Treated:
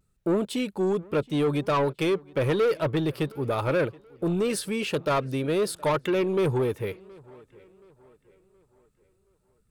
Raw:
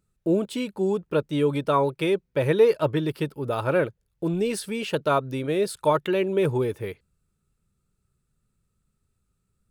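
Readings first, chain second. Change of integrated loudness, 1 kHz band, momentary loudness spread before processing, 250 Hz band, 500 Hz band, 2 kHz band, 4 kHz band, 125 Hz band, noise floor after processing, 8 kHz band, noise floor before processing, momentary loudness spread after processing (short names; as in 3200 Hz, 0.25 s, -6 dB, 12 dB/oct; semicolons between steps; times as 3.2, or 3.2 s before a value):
-1.5 dB, -2.5 dB, 8 LU, -0.5 dB, -2.5 dB, -0.5 dB, 0.0 dB, -0.5 dB, -69 dBFS, +1.5 dB, -75 dBFS, 5 LU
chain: vibrato 0.77 Hz 39 cents; soft clip -21 dBFS, distortion -11 dB; tape echo 0.723 s, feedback 47%, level -22 dB, low-pass 3700 Hz; gain +2 dB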